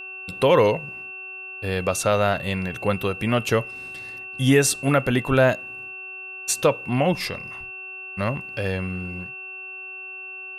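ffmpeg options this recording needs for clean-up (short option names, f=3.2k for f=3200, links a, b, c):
-af "bandreject=f=376.8:t=h:w=4,bandreject=f=753.6:t=h:w=4,bandreject=f=1.1304k:t=h:w=4,bandreject=f=1.5072k:t=h:w=4,bandreject=f=2.7k:w=30"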